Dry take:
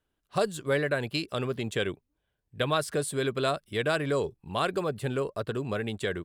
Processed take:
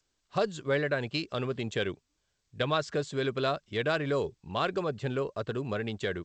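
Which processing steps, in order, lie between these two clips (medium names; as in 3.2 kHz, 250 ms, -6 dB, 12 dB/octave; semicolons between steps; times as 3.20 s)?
trim -1.5 dB; G.722 64 kbps 16 kHz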